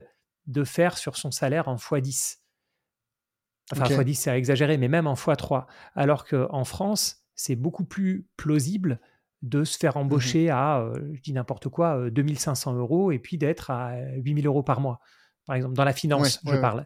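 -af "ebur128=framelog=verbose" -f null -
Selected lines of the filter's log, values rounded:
Integrated loudness:
  I:         -25.6 LUFS
  Threshold: -35.9 LUFS
Loudness range:
  LRA:         3.2 LU
  Threshold: -46.2 LUFS
  LRA low:   -27.8 LUFS
  LRA high:  -24.7 LUFS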